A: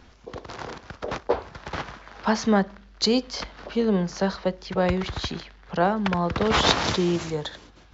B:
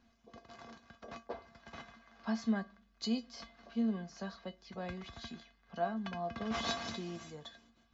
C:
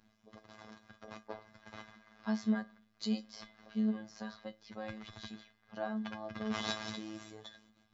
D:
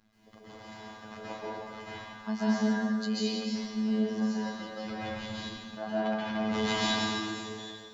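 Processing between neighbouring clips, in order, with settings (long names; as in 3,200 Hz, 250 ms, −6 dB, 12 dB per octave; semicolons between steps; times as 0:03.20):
tuned comb filter 230 Hz, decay 0.16 s, harmonics odd, mix 90%; level −4.5 dB
phases set to zero 108 Hz; level +1.5 dB
dense smooth reverb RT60 1.6 s, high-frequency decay 0.9×, pre-delay 120 ms, DRR −10 dB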